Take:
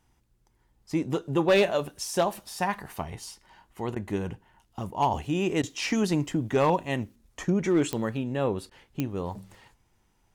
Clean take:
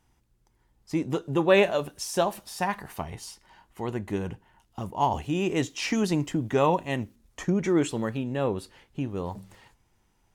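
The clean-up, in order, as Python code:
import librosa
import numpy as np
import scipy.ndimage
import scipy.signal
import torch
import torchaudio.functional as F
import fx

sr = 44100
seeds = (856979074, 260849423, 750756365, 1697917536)

y = fx.fix_declip(x, sr, threshold_db=-15.5)
y = fx.fix_declick_ar(y, sr, threshold=10.0)
y = fx.fix_interpolate(y, sr, at_s=(3.95, 5.62, 8.7), length_ms=11.0)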